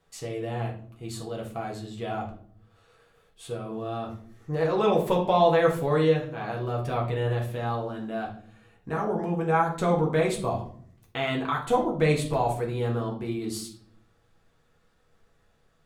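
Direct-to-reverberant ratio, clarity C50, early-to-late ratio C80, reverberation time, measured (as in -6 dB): -1.5 dB, 8.5 dB, 13.5 dB, 0.55 s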